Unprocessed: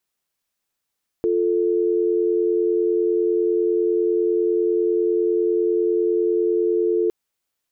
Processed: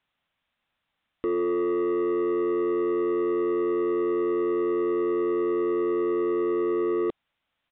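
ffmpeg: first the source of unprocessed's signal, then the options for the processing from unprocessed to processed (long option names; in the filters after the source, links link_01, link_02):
-f lavfi -i "aevalsrc='0.106*(sin(2*PI*350*t)+sin(2*PI*440*t))':duration=5.86:sample_rate=44100"
-af "equalizer=frequency=400:width=2.8:gain=-9.5,acontrast=75,aresample=8000,asoftclip=type=tanh:threshold=-22dB,aresample=44100"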